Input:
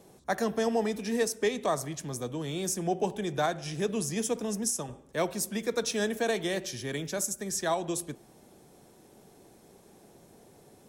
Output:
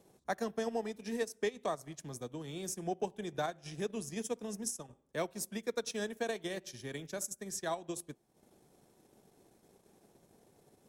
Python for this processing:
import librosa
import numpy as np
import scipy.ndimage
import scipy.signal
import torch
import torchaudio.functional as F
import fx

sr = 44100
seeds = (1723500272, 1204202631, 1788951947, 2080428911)

y = fx.transient(x, sr, attack_db=4, sustain_db=-10)
y = y * librosa.db_to_amplitude(-9.0)